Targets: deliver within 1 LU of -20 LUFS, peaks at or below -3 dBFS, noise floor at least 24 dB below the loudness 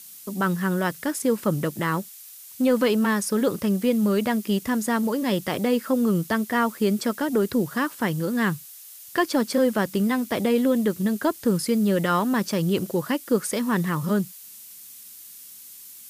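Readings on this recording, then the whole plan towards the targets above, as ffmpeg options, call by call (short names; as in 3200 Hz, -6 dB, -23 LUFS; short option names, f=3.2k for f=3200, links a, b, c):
noise floor -44 dBFS; noise floor target -48 dBFS; loudness -24.0 LUFS; peak -9.0 dBFS; loudness target -20.0 LUFS
-> -af "afftdn=nr=6:nf=-44"
-af "volume=4dB"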